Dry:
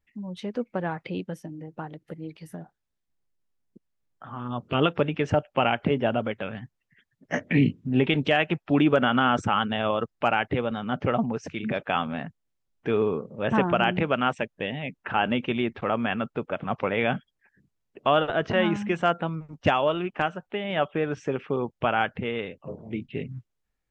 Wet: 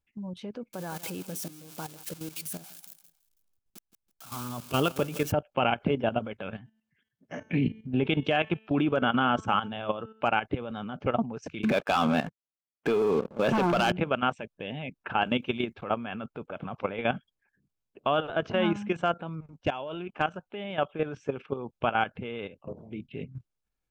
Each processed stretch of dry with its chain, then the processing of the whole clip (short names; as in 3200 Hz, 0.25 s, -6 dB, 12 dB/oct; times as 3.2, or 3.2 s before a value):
0.73–5.32 switching spikes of -25 dBFS + feedback echo 0.164 s, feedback 36%, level -16 dB
6.58–10.26 HPF 54 Hz + high shelf 6900 Hz -6 dB + de-hum 219.8 Hz, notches 39
11.63–13.92 HPF 150 Hz + low shelf 210 Hz -3 dB + sample leveller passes 3
15.22–15.81 high shelf 5100 Hz +11 dB + gate -43 dBFS, range -14 dB
19.61–20.09 notch 1200 Hz, Q 7.5 + level quantiser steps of 10 dB
whole clip: notch 1900 Hz, Q 6.4; level quantiser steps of 12 dB